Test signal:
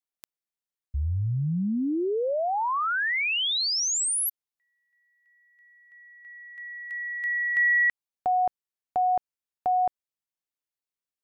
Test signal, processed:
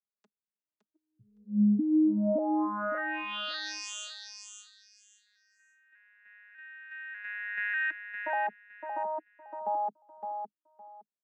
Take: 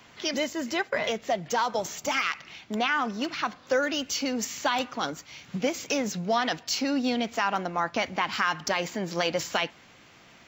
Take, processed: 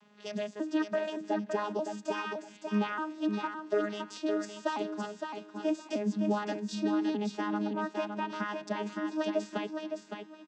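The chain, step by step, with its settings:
vocoder with an arpeggio as carrier bare fifth, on G#3, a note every 595 ms
notch filter 2,200 Hz, Q 9.1
repeating echo 563 ms, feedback 21%, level −6 dB
level −4.5 dB

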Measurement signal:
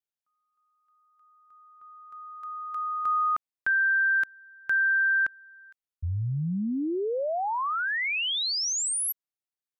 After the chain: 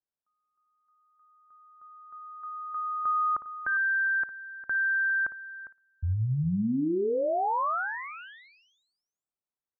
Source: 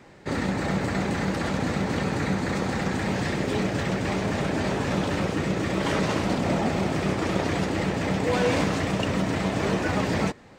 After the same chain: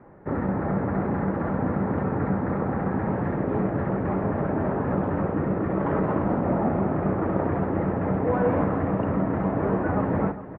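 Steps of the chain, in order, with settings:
low-pass filter 1,400 Hz 24 dB per octave
on a send: multi-tap delay 56/404 ms −13/−14 dB
on the sum: level +1 dB

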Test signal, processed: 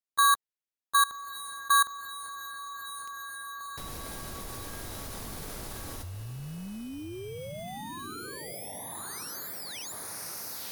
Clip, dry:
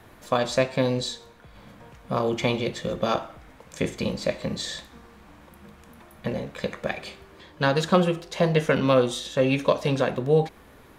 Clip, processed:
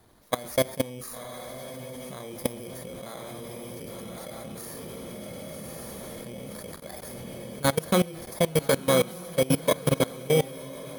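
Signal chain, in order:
samples in bit-reversed order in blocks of 16 samples
on a send: feedback delay with all-pass diffusion 1,100 ms, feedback 42%, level −4 dB
on the sum: output level in coarse steps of 20 dB
level +1.5 dB
MP3 160 kbit/s 44,100 Hz

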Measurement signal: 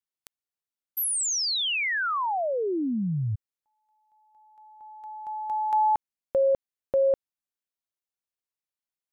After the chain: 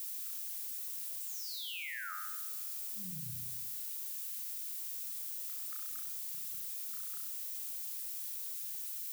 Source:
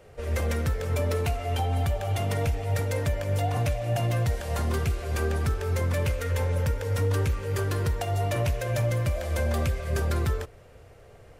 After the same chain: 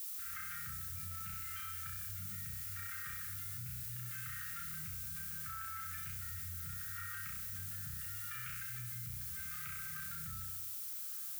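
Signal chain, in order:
brick-wall band-stop 210–1,200 Hz
on a send: flutter between parallel walls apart 5.6 metres, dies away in 0.88 s
on the sum: LFO wah 0.74 Hz 440–1,100 Hz, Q 2.8
background noise violet −44 dBFS
envelope flattener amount 100%
level −5 dB

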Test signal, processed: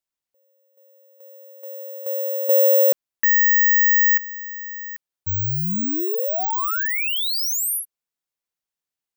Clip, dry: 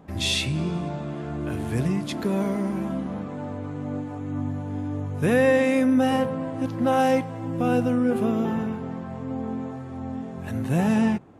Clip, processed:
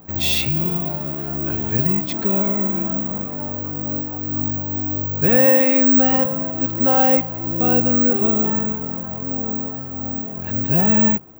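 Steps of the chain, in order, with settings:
bad sample-rate conversion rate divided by 2×, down filtered, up zero stuff
level +2.5 dB

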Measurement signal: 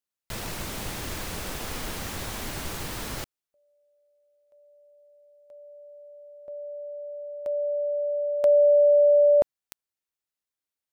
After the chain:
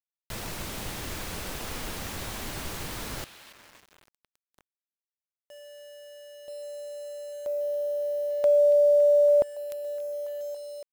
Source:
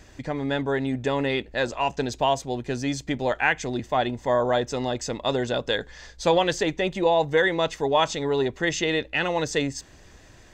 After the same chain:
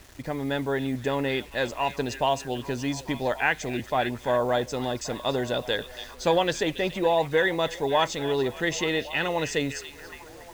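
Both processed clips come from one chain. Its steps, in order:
echo through a band-pass that steps 281 ms, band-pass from 3,300 Hz, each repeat −0.7 octaves, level −8.5 dB
bit-depth reduction 8 bits, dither none
level −2 dB

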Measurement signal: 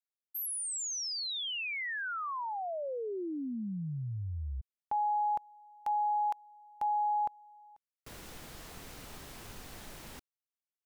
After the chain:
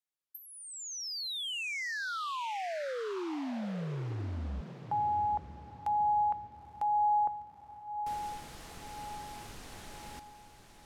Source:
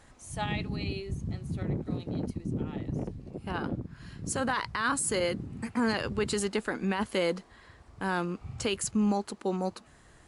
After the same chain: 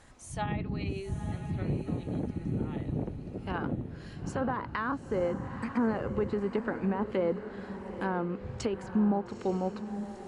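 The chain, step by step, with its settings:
treble cut that deepens with the level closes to 1,000 Hz, closed at −26 dBFS
feedback delay with all-pass diffusion 893 ms, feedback 43%, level −10 dB

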